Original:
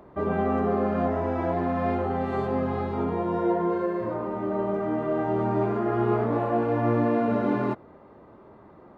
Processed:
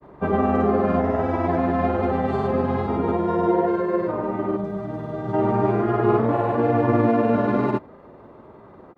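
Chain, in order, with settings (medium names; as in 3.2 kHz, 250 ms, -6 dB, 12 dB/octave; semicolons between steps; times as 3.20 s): granulator, pitch spread up and down by 0 st; time-frequency box 4.57–5.34 s, 210–3300 Hz -9 dB; trim +6 dB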